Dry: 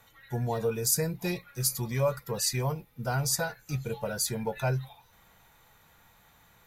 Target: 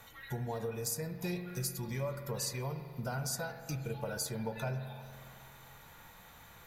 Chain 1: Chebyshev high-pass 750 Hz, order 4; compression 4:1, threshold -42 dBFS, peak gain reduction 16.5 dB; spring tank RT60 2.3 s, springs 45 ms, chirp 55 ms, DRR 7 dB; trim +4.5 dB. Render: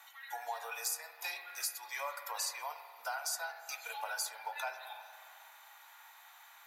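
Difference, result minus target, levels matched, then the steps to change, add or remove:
1 kHz band +6.0 dB
remove: Chebyshev high-pass 750 Hz, order 4

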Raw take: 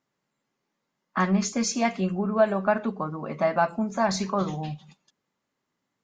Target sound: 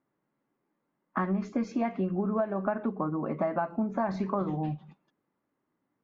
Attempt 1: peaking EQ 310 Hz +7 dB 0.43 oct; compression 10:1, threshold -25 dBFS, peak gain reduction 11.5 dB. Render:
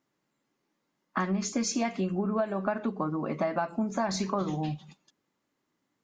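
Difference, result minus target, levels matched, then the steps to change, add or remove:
2 kHz band +3.0 dB
add first: low-pass 1.6 kHz 12 dB/octave

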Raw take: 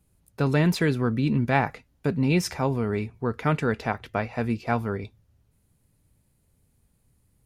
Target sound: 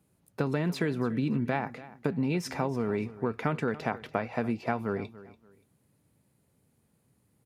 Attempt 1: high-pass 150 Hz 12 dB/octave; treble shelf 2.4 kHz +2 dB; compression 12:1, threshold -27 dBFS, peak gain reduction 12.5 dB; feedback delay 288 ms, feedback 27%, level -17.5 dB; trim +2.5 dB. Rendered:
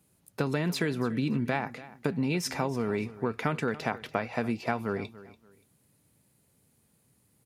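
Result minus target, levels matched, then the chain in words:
4 kHz band +5.0 dB
high-pass 150 Hz 12 dB/octave; treble shelf 2.4 kHz -6 dB; compression 12:1, threshold -27 dBFS, peak gain reduction 11 dB; feedback delay 288 ms, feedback 27%, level -17.5 dB; trim +2.5 dB

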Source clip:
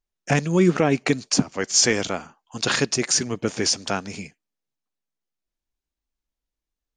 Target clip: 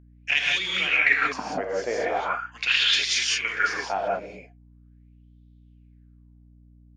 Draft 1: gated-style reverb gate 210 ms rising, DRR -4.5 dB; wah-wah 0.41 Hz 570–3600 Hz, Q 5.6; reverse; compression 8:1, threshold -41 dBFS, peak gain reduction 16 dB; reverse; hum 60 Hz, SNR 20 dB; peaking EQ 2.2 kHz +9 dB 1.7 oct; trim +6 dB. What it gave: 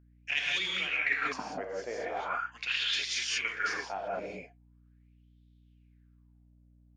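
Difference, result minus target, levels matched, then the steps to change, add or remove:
compression: peak gain reduction +10 dB
change: compression 8:1, threshold -29.5 dBFS, peak gain reduction 6 dB

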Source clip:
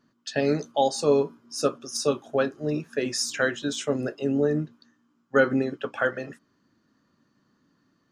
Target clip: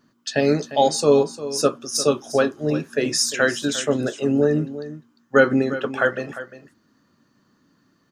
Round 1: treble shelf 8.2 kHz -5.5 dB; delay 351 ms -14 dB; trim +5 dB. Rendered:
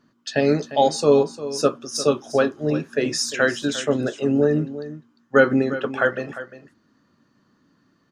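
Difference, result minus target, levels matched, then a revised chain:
8 kHz band -4.0 dB
treble shelf 8.2 kHz +6 dB; delay 351 ms -14 dB; trim +5 dB

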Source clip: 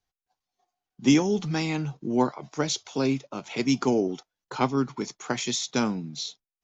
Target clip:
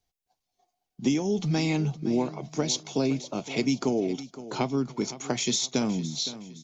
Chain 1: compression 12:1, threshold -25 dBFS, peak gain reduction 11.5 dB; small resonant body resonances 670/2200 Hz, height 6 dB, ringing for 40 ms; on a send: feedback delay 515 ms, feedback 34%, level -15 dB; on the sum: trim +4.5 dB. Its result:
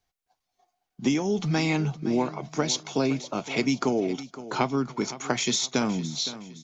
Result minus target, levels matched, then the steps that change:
1 kHz band +4.0 dB
add after compression: peaking EQ 1.4 kHz -8.5 dB 1.5 oct

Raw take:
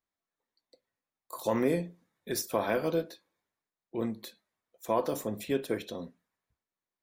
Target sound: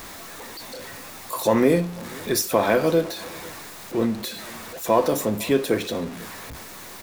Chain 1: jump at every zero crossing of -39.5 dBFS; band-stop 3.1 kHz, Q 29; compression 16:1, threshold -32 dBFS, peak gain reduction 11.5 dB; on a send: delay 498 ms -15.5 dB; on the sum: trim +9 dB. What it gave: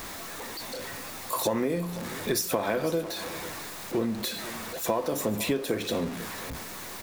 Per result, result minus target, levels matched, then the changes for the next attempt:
compression: peak gain reduction +11.5 dB; echo-to-direct +7.5 dB
remove: compression 16:1, threshold -32 dBFS, peak gain reduction 11.5 dB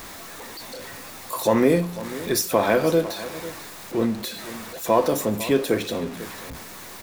echo-to-direct +7.5 dB
change: delay 498 ms -23 dB

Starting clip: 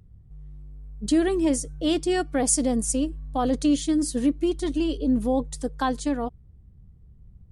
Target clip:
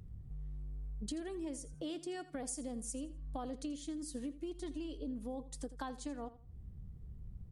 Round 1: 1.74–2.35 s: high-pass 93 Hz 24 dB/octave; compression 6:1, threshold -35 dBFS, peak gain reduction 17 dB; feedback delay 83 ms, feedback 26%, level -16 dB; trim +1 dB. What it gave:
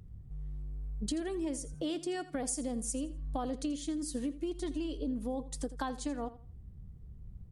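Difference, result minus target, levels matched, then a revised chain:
compression: peak gain reduction -6 dB
1.74–2.35 s: high-pass 93 Hz 24 dB/octave; compression 6:1, threshold -42.5 dBFS, peak gain reduction 23 dB; feedback delay 83 ms, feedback 26%, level -16 dB; trim +1 dB

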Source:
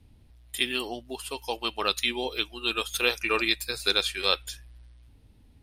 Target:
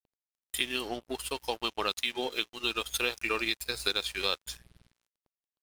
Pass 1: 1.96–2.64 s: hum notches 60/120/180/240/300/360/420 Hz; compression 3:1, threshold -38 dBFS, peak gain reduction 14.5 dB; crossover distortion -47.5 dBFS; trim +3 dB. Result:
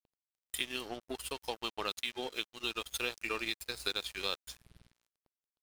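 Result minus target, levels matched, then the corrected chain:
compression: peak gain reduction +5 dB
1.96–2.64 s: hum notches 60/120/180/240/300/360/420 Hz; compression 3:1, threshold -30.5 dBFS, peak gain reduction 9.5 dB; crossover distortion -47.5 dBFS; trim +3 dB

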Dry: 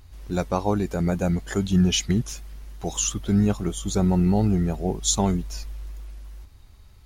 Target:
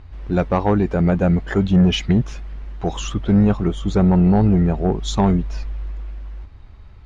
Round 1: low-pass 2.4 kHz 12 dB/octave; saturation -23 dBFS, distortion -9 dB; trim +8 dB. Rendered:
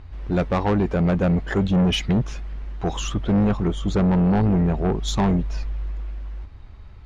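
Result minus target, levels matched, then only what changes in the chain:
saturation: distortion +8 dB
change: saturation -15.5 dBFS, distortion -17 dB

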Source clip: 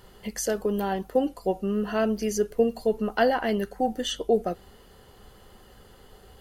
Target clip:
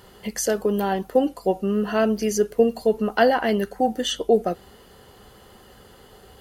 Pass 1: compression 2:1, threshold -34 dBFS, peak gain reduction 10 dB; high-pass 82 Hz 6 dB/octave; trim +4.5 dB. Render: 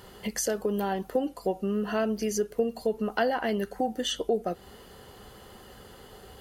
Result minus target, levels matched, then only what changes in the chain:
compression: peak gain reduction +10 dB
remove: compression 2:1, threshold -34 dBFS, peak gain reduction 10 dB

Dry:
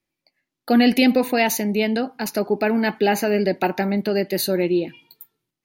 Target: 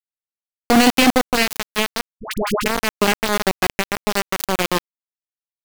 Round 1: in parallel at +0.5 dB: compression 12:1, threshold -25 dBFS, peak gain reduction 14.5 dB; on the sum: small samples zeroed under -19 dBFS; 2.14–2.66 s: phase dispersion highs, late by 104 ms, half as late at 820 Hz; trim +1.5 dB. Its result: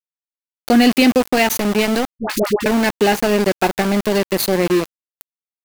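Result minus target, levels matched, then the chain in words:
small samples zeroed: distortion -11 dB
in parallel at +0.5 dB: compression 12:1, threshold -25 dBFS, peak gain reduction 14.5 dB; on the sum: small samples zeroed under -11 dBFS; 2.14–2.66 s: phase dispersion highs, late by 104 ms, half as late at 820 Hz; trim +1.5 dB

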